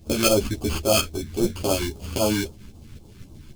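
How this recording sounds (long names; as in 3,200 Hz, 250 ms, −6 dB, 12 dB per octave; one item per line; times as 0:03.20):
aliases and images of a low sample rate 1,900 Hz, jitter 0%
phaser sweep stages 2, 3.7 Hz, lowest notch 630–1,800 Hz
tremolo saw up 3.7 Hz, depth 60%
a shimmering, thickened sound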